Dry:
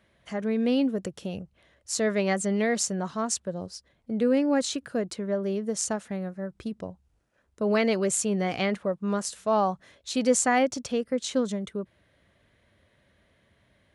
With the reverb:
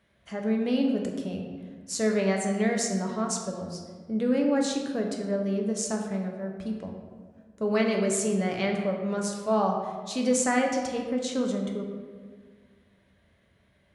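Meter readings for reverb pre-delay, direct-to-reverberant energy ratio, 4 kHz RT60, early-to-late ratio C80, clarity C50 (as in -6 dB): 3 ms, 1.0 dB, 0.90 s, 5.5 dB, 4.0 dB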